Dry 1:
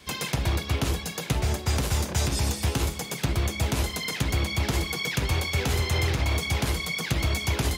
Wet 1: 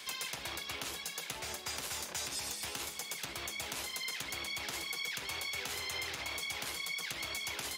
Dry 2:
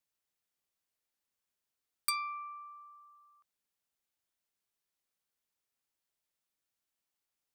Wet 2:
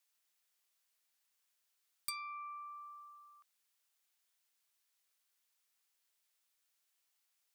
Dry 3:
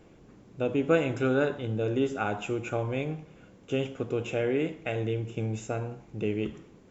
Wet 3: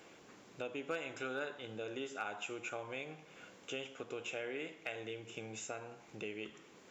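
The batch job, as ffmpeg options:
-af "highpass=f=1400:p=1,acompressor=threshold=0.00158:ratio=2,asoftclip=type=hard:threshold=0.0158,volume=2.37"

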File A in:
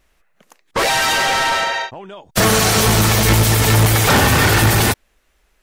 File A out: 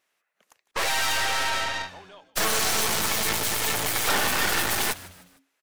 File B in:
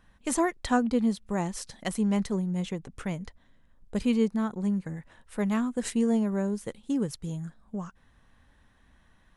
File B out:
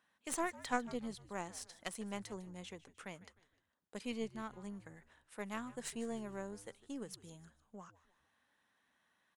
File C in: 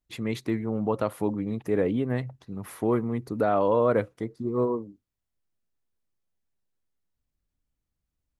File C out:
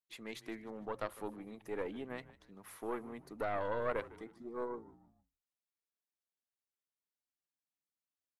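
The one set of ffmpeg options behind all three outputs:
-filter_complex "[0:a]highpass=190,lowshelf=f=460:g=-10.5,aeval=exprs='0.631*(cos(1*acos(clip(val(0)/0.631,-1,1)))-cos(1*PI/2))+0.126*(cos(6*acos(clip(val(0)/0.631,-1,1)))-cos(6*PI/2))':c=same,asplit=4[s0][s1][s2][s3];[s1]adelay=152,afreqshift=-91,volume=0.126[s4];[s2]adelay=304,afreqshift=-182,volume=0.0531[s5];[s3]adelay=456,afreqshift=-273,volume=0.0221[s6];[s0][s4][s5][s6]amix=inputs=4:normalize=0,volume=0.355"

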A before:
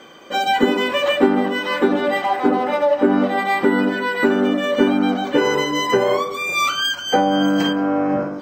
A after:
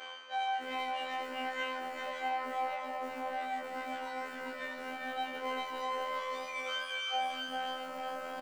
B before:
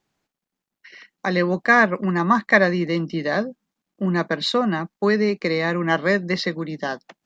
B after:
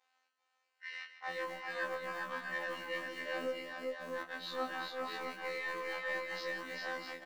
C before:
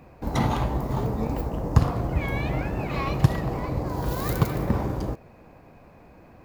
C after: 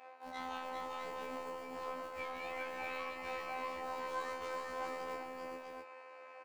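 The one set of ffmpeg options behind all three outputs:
-filter_complex "[0:a]equalizer=f=480:t=o:w=0.43:g=-3.5,aresample=22050,aresample=44100,areverse,acompressor=threshold=0.0251:ratio=12,areverse,asplit=2[s0][s1];[s1]highpass=f=720:p=1,volume=6.31,asoftclip=type=tanh:threshold=0.0708[s2];[s0][s2]amix=inputs=2:normalize=0,lowpass=f=5200:p=1,volume=0.501,flanger=delay=17:depth=5.1:speed=2.3,bass=f=250:g=-13,treble=f=4000:g=-7,acrossover=split=330|1000[s3][s4][s5];[s3]acrusher=bits=7:mix=0:aa=0.000001[s6];[s6][s4][s5]amix=inputs=3:normalize=0,afftfilt=real='hypot(re,im)*cos(PI*b)':imag='0':win_size=2048:overlap=0.75,aecho=1:1:158|391|397|652:0.237|0.2|0.668|0.531,afftfilt=real='re*1.73*eq(mod(b,3),0)':imag='im*1.73*eq(mod(b,3),0)':win_size=2048:overlap=0.75,volume=1.12"

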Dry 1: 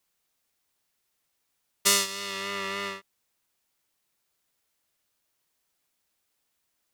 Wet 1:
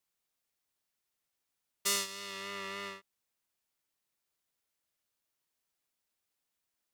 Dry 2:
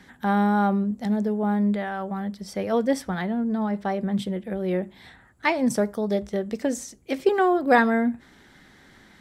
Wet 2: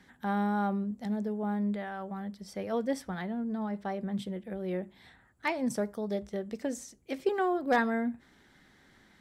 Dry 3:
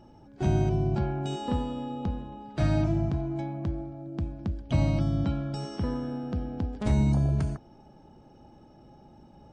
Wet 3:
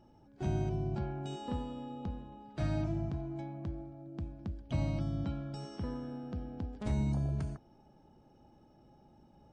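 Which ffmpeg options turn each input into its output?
-af "aeval=exprs='0.376*(abs(mod(val(0)/0.376+3,4)-2)-1)':c=same,volume=0.376"

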